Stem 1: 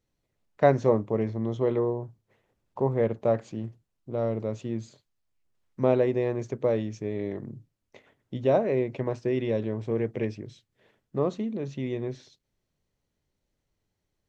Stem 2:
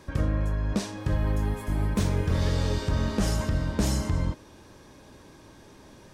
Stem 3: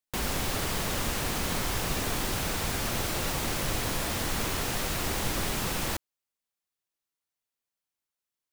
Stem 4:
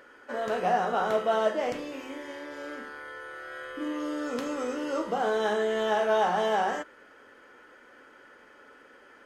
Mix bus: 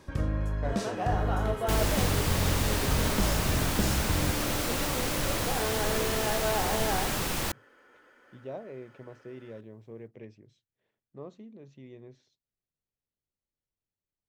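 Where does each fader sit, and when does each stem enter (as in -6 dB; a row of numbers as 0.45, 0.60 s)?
-17.0, -3.5, 0.0, -6.0 dB; 0.00, 0.00, 1.55, 0.35 s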